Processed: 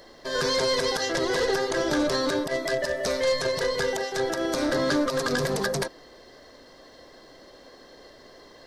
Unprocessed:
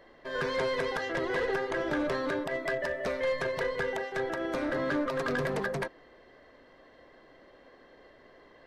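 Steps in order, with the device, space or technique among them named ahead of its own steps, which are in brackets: over-bright horn tweeter (resonant high shelf 3.5 kHz +12 dB, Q 1.5; peak limiter -22 dBFS, peak gain reduction 9 dB); trim +6.5 dB

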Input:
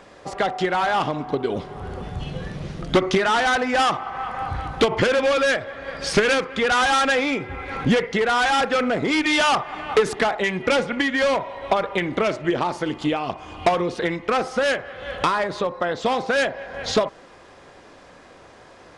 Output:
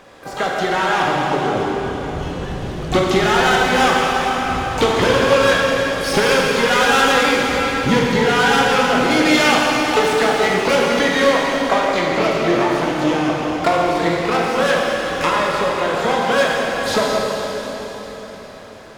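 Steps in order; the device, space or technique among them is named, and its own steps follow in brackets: shimmer-style reverb (harmony voices +12 st -9 dB; reverberation RT60 4.5 s, pre-delay 17 ms, DRR -3 dB)

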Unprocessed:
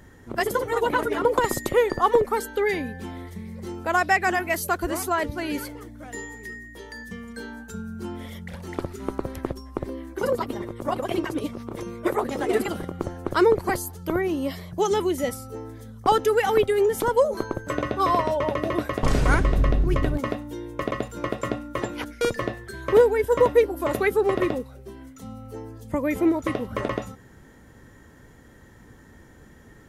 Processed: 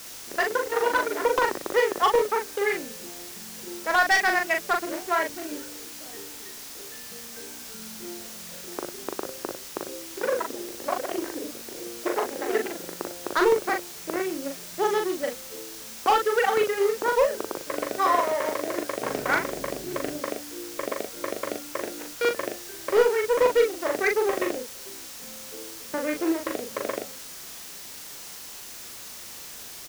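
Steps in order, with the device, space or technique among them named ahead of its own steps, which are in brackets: local Wiener filter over 41 samples; drive-through speaker (band-pass 430–3800 Hz; peaking EQ 1.8 kHz +5 dB 0.77 oct; hard clipper -15 dBFS, distortion -16 dB; white noise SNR 14 dB); peaking EQ 5.8 kHz +4.5 dB 0.81 oct; doubling 40 ms -4 dB

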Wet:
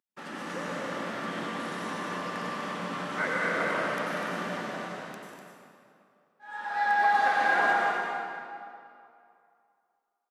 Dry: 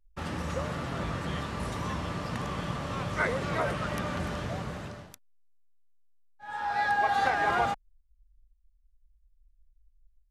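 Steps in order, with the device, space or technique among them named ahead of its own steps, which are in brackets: stadium PA (high-pass 200 Hz 24 dB/octave; peaking EQ 1.7 kHz +4.5 dB 0.63 oct; loudspeakers at several distances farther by 51 m -12 dB, 66 m -11 dB, 85 m -7 dB; reverberation RT60 2.5 s, pre-delay 85 ms, DRR -3 dB); trim -5.5 dB

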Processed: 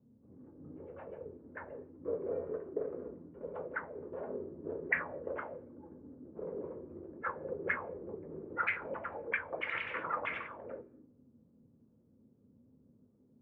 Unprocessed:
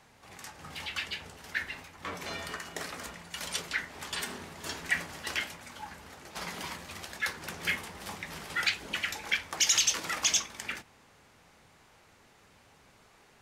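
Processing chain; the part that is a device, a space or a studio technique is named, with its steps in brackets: gated-style reverb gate 280 ms flat, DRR 10 dB; envelope filter bass rig (touch-sensitive low-pass 220–2100 Hz up, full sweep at -25 dBFS; cabinet simulation 87–2000 Hz, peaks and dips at 190 Hz -6 dB, 510 Hz +8 dB, 770 Hz -7 dB, 1.9 kHz -6 dB); 2.13–3.09 s: dynamic bell 2 kHz, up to +5 dB, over -53 dBFS, Q 0.75; trim -3 dB

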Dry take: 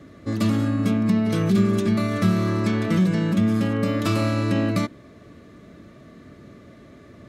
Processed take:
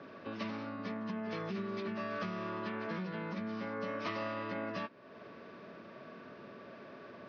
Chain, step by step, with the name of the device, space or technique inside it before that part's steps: hearing aid with frequency lowering (knee-point frequency compression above 1.1 kHz 1.5:1; compression 2:1, threshold -42 dBFS, peak gain reduction 15 dB; cabinet simulation 290–6100 Hz, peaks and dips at 300 Hz -9 dB, 970 Hz +7 dB, 2.1 kHz +3 dB, 4.8 kHz +3 dB); trim +1 dB

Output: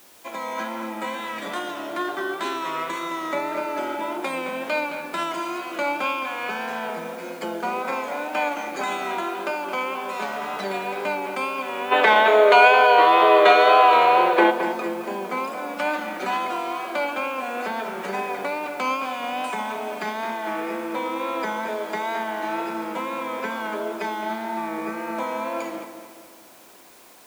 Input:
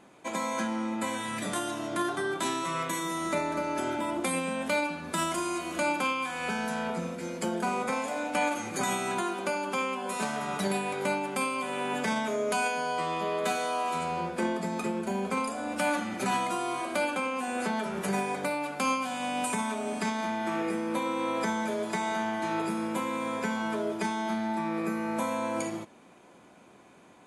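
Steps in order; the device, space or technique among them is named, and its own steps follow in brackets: dictaphone (band-pass 340–4000 Hz; level rider gain up to 4 dB; wow and flutter; white noise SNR 23 dB); time-frequency box 11.92–14.51 s, 290–4500 Hz +12 dB; bass shelf 63 Hz -7 dB; filtered feedback delay 217 ms, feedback 46%, low-pass 3.9 kHz, level -9 dB

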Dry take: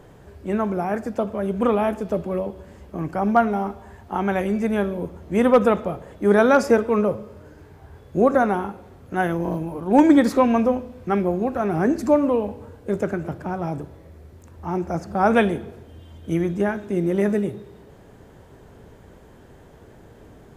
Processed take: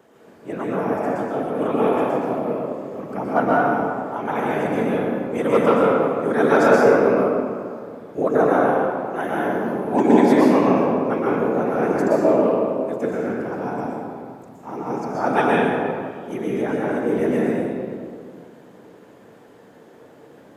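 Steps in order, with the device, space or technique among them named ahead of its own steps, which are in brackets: whispering ghost (whisper effect; high-pass 240 Hz 12 dB/octave; reverberation RT60 2.2 s, pre-delay 113 ms, DRR -6 dB); trim -4.5 dB

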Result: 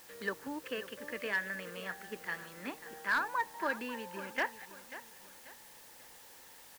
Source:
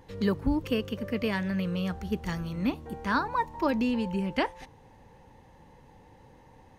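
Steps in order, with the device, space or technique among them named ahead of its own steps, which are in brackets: drive-through speaker (band-pass 430–3900 Hz; peaking EQ 1.7 kHz +12 dB 0.48 oct; hard clipper -17.5 dBFS, distortion -18 dB; white noise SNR 16 dB); feedback delay 539 ms, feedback 37%, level -14 dB; trim -7 dB

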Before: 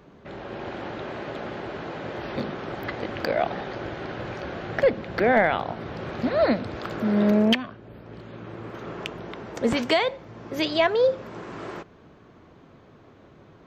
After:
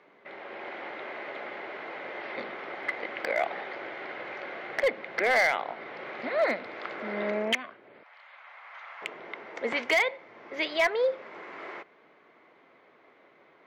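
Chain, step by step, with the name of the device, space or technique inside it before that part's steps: megaphone (band-pass 470–3700 Hz; peaking EQ 2.1 kHz +12 dB 0.26 oct; hard clipper -14.5 dBFS, distortion -16 dB); 8.03–9.02 s: inverse Chebyshev high-pass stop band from 380 Hz, stop band 40 dB; trim -3.5 dB

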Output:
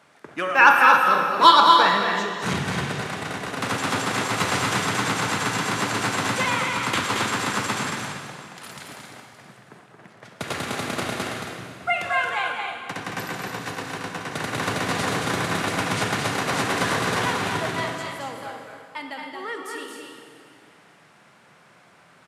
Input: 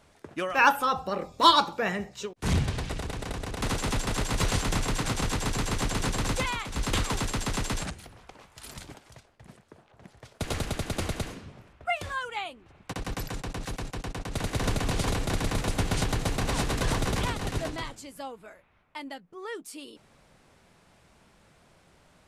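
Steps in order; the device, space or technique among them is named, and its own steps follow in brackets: stadium PA (high-pass 120 Hz 24 dB/octave; peaking EQ 1.5 kHz +8 dB 1.9 oct; loudspeakers at several distances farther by 77 m -5 dB, 94 m -9 dB; reverberation RT60 2.4 s, pre-delay 30 ms, DRR 3.5 dB)

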